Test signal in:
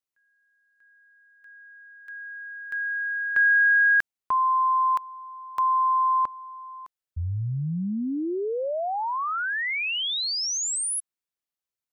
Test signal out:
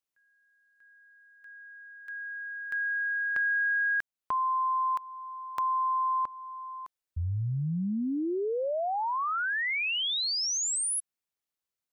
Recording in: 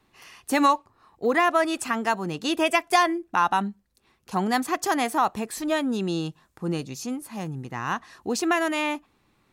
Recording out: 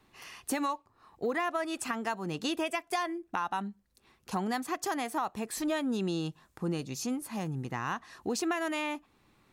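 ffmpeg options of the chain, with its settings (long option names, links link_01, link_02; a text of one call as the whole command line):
ffmpeg -i in.wav -af "acompressor=threshold=-26dB:ratio=6:attack=2.8:release=778:knee=6:detection=peak" out.wav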